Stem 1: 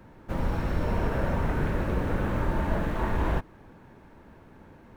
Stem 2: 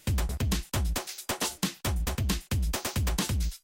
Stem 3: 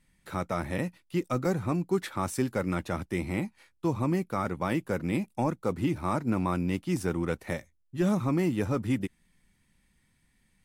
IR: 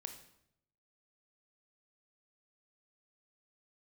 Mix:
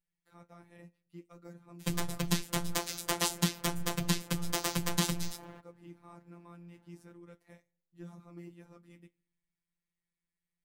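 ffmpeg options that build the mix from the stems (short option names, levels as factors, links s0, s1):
-filter_complex "[0:a]highpass=95,asoftclip=type=hard:threshold=0.0251,adelay=2200,volume=0.168,asplit=2[s0][s1];[s1]volume=0.266[s2];[1:a]adelay=1800,volume=1.41[s3];[2:a]flanger=delay=7.9:depth=5.7:regen=-54:speed=1.4:shape=triangular,volume=0.133,asplit=2[s4][s5];[s5]volume=0.2[s6];[3:a]atrim=start_sample=2205[s7];[s2][s6]amix=inputs=2:normalize=0[s8];[s8][s7]afir=irnorm=-1:irlink=0[s9];[s0][s3][s4][s9]amix=inputs=4:normalize=0,afftfilt=real='hypot(re,im)*cos(PI*b)':imag='0':win_size=1024:overlap=0.75"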